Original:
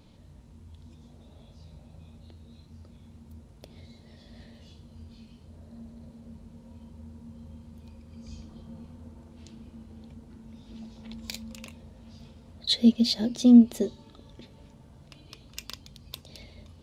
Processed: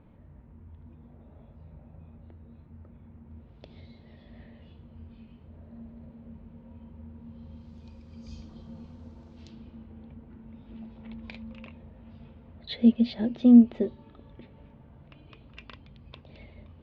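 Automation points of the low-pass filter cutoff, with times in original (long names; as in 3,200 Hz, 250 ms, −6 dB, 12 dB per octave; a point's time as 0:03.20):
low-pass filter 24 dB per octave
0:03.24 2,100 Hz
0:03.68 4,300 Hz
0:04.42 2,700 Hz
0:07.14 2,700 Hz
0:07.74 5,900 Hz
0:09.41 5,900 Hz
0:09.93 2,700 Hz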